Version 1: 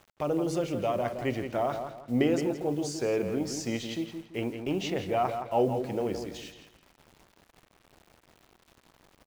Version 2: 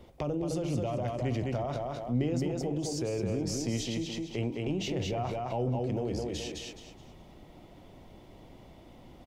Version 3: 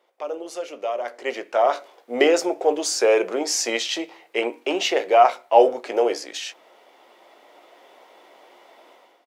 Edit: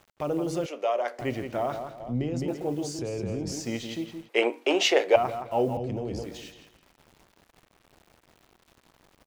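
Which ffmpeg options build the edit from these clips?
-filter_complex "[2:a]asplit=2[a][b];[1:a]asplit=3[c][d][e];[0:a]asplit=6[f][g][h][i][j][k];[f]atrim=end=0.662[l];[a]atrim=start=0.658:end=1.192[m];[g]atrim=start=1.188:end=2.002[n];[c]atrim=start=1.998:end=2.482[o];[h]atrim=start=2.478:end=2.992[p];[d]atrim=start=2.988:end=3.522[q];[i]atrim=start=3.518:end=4.292[r];[b]atrim=start=4.288:end=5.162[s];[j]atrim=start=5.158:end=5.772[t];[e]atrim=start=5.768:end=6.232[u];[k]atrim=start=6.228[v];[l][m]acrossfade=d=0.004:c1=hsin:c2=hsin[w];[w][n]acrossfade=d=0.004:c1=hsin:c2=hsin[x];[x][o]acrossfade=d=0.004:c1=hsin:c2=hsin[y];[y][p]acrossfade=d=0.004:c1=hsin:c2=hsin[z];[z][q]acrossfade=d=0.004:c1=hsin:c2=hsin[aa];[aa][r]acrossfade=d=0.004:c1=hsin:c2=hsin[ab];[ab][s]acrossfade=d=0.004:c1=hsin:c2=hsin[ac];[ac][t]acrossfade=d=0.004:c1=hsin:c2=hsin[ad];[ad][u]acrossfade=d=0.004:c1=hsin:c2=hsin[ae];[ae][v]acrossfade=d=0.004:c1=hsin:c2=hsin"

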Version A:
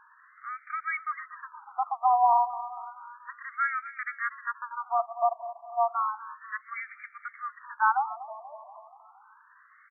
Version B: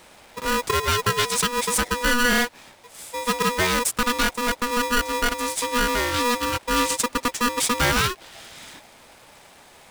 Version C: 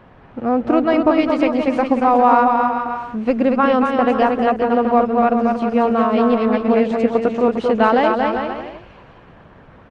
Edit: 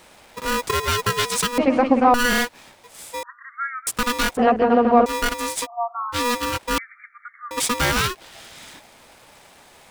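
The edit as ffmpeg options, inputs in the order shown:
-filter_complex "[2:a]asplit=2[a][b];[0:a]asplit=3[c][d][e];[1:a]asplit=6[f][g][h][i][j][k];[f]atrim=end=1.582[l];[a]atrim=start=1.578:end=2.142[m];[g]atrim=start=2.138:end=3.232[n];[c]atrim=start=3.228:end=3.872[o];[h]atrim=start=3.868:end=4.372[p];[b]atrim=start=4.368:end=5.062[q];[i]atrim=start=5.058:end=5.67[r];[d]atrim=start=5.63:end=6.16[s];[j]atrim=start=6.12:end=6.782[t];[e]atrim=start=6.778:end=7.512[u];[k]atrim=start=7.508[v];[l][m]acrossfade=d=0.004:c1=hsin:c2=hsin[w];[w][n]acrossfade=d=0.004:c1=hsin:c2=hsin[x];[x][o]acrossfade=d=0.004:c1=hsin:c2=hsin[y];[y][p]acrossfade=d=0.004:c1=hsin:c2=hsin[z];[z][q]acrossfade=d=0.004:c1=hsin:c2=hsin[aa];[aa][r]acrossfade=d=0.004:c1=hsin:c2=hsin[ab];[ab][s]acrossfade=d=0.04:c1=tri:c2=tri[ac];[ac][t]acrossfade=d=0.04:c1=tri:c2=tri[ad];[ad][u]acrossfade=d=0.004:c1=hsin:c2=hsin[ae];[ae][v]acrossfade=d=0.004:c1=hsin:c2=hsin"

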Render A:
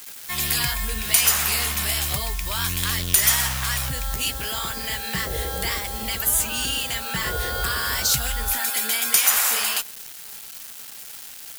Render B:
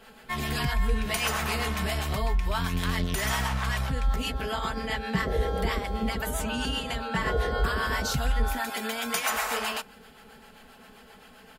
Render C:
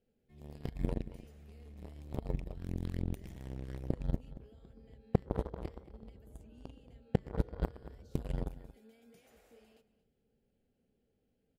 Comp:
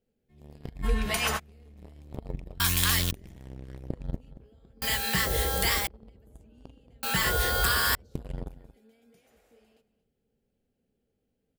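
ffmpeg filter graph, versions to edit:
-filter_complex "[0:a]asplit=3[a][b][c];[2:a]asplit=5[d][e][f][g][h];[d]atrim=end=0.86[i];[1:a]atrim=start=0.82:end=1.4[j];[e]atrim=start=1.36:end=2.602[k];[a]atrim=start=2.598:end=3.112[l];[f]atrim=start=3.108:end=4.822[m];[b]atrim=start=4.818:end=5.872[n];[g]atrim=start=5.868:end=7.032[o];[c]atrim=start=7.028:end=7.952[p];[h]atrim=start=7.948[q];[i][j]acrossfade=d=0.04:c1=tri:c2=tri[r];[r][k]acrossfade=d=0.04:c1=tri:c2=tri[s];[s][l]acrossfade=d=0.004:c1=hsin:c2=hsin[t];[t][m]acrossfade=d=0.004:c1=hsin:c2=hsin[u];[u][n]acrossfade=d=0.004:c1=hsin:c2=hsin[v];[v][o]acrossfade=d=0.004:c1=hsin:c2=hsin[w];[w][p]acrossfade=d=0.004:c1=hsin:c2=hsin[x];[x][q]acrossfade=d=0.004:c1=hsin:c2=hsin"

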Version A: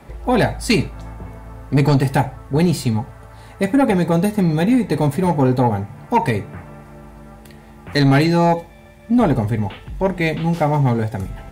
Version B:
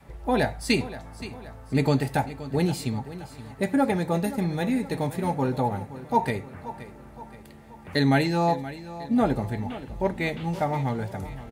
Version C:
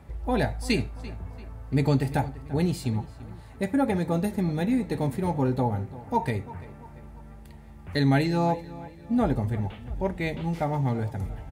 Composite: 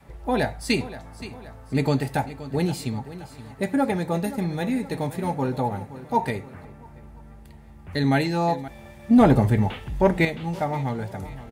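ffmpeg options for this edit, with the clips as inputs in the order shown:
-filter_complex "[1:a]asplit=3[a][b][c];[a]atrim=end=6.652[d];[2:a]atrim=start=6.648:end=8.042[e];[b]atrim=start=8.038:end=8.682[f];[0:a]atrim=start=8.678:end=10.252[g];[c]atrim=start=10.248[h];[d][e]acrossfade=d=0.004:c1=hsin:c2=hsin[i];[i][f]acrossfade=d=0.004:c1=hsin:c2=hsin[j];[j][g]acrossfade=d=0.004:c1=hsin:c2=hsin[k];[k][h]acrossfade=d=0.004:c1=hsin:c2=hsin"

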